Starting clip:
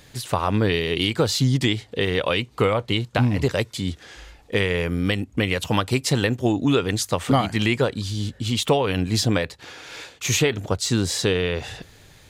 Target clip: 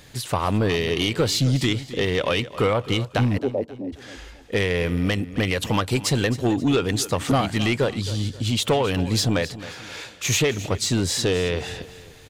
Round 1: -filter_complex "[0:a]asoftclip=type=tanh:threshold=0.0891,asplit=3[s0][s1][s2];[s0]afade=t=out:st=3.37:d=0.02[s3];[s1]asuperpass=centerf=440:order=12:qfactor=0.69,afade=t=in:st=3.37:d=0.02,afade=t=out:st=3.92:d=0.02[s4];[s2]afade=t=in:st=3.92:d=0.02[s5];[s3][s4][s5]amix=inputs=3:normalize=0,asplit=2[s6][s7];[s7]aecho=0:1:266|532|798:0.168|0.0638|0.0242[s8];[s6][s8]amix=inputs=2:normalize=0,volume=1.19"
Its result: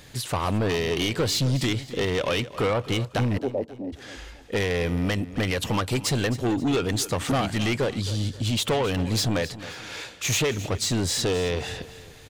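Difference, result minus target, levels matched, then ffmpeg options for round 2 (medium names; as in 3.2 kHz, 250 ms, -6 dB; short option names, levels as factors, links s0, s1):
saturation: distortion +6 dB
-filter_complex "[0:a]asoftclip=type=tanh:threshold=0.188,asplit=3[s0][s1][s2];[s0]afade=t=out:st=3.37:d=0.02[s3];[s1]asuperpass=centerf=440:order=12:qfactor=0.69,afade=t=in:st=3.37:d=0.02,afade=t=out:st=3.92:d=0.02[s4];[s2]afade=t=in:st=3.92:d=0.02[s5];[s3][s4][s5]amix=inputs=3:normalize=0,asplit=2[s6][s7];[s7]aecho=0:1:266|532|798:0.168|0.0638|0.0242[s8];[s6][s8]amix=inputs=2:normalize=0,volume=1.19"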